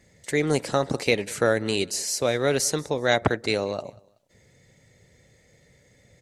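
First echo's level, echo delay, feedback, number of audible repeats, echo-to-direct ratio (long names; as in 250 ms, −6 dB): −23.5 dB, 188 ms, 31%, 2, −23.0 dB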